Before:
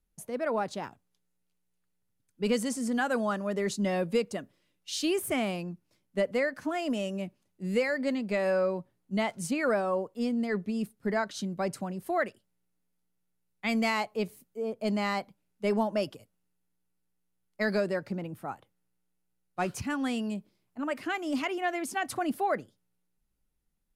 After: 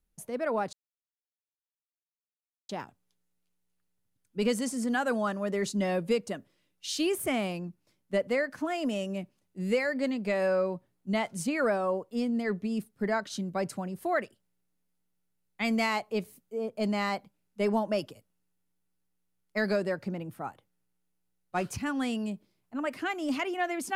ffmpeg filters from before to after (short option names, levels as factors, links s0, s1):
-filter_complex "[0:a]asplit=2[s0][s1];[s0]atrim=end=0.73,asetpts=PTS-STARTPTS,afade=t=out:st=0.726:d=0.004:c=hsin,apad=pad_dur=1.96[s2];[s1]atrim=start=0.73,asetpts=PTS-STARTPTS,afade=t=in:d=0.004:c=hsin[s3];[s2][s3]concat=n=2:v=0:a=1"